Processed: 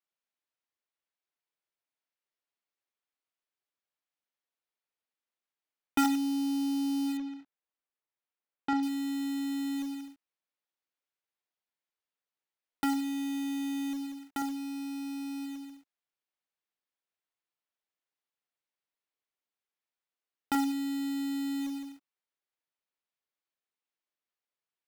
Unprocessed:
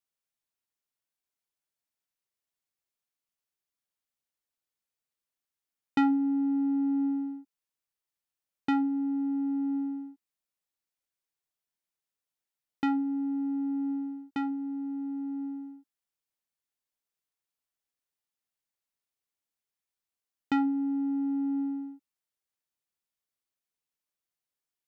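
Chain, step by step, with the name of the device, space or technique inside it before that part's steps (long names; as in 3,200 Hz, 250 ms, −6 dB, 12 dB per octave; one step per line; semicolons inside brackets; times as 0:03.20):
early digital voice recorder (band-pass filter 280–3,700 Hz; one scale factor per block 3 bits)
0:07.17–0:08.83: high-frequency loss of the air 180 metres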